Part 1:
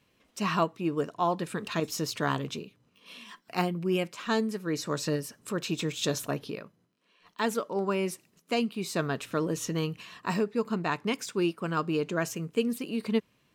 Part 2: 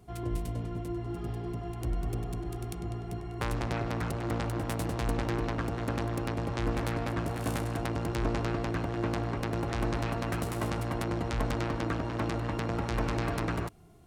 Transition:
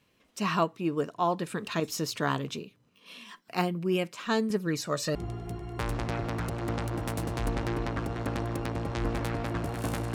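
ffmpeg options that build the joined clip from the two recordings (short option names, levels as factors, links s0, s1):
-filter_complex "[0:a]asettb=1/sr,asplit=3[s0][s1][s2];[s0]atrim=end=4.504[s3];[s1]atrim=start=4.5:end=5.15,asetpts=PTS-STARTPTS,afade=t=in:d=0.004:c=qsin,afade=t=out:st=0.646:d=0.004:c=qsin,aphaser=in_gain=1:out_gain=1:delay=1.7:decay=0.56:speed=0.98:type=sinusoidal[s4];[s2]atrim=start=5.146[s5];[s3][s4]acrossfade=d=0.004:c1=hsin:c2=qsin[s6];[s6][s5]acrossfade=d=0.004:c1=qsin:c2=hsin,apad=whole_dur=10.14,atrim=end=10.14,atrim=end=5.152[s7];[1:a]atrim=start=2.768:end=7.76[s8];[s7][s8]acrossfade=d=0.004:c1=hsin:c2=hsin"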